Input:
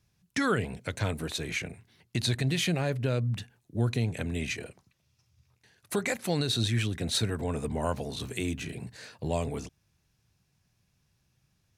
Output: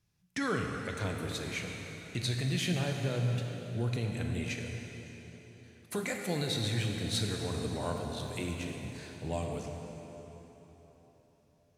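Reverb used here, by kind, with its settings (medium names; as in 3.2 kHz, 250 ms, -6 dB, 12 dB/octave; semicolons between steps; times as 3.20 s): plate-style reverb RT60 4.1 s, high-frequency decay 0.8×, DRR 1.5 dB; trim -6 dB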